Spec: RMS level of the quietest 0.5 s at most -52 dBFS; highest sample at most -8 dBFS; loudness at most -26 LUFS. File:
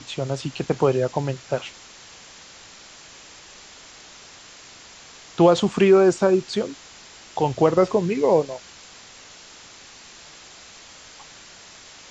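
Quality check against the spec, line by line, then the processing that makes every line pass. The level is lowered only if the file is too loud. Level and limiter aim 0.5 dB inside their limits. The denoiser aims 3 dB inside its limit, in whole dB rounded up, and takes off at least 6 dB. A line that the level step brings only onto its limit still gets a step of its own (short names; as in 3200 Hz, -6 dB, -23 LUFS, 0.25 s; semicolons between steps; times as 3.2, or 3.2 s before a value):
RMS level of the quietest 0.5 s -45 dBFS: fail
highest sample -4.5 dBFS: fail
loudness -20.5 LUFS: fail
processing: denoiser 6 dB, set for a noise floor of -45 dBFS; gain -6 dB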